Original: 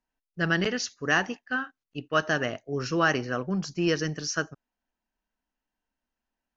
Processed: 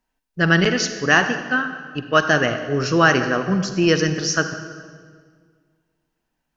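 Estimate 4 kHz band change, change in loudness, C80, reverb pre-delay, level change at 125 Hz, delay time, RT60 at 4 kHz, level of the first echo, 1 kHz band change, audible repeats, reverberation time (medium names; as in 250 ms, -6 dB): +9.0 dB, +9.0 dB, 10.0 dB, 40 ms, +9.5 dB, no echo, 1.4 s, no echo, +9.0 dB, no echo, 1.8 s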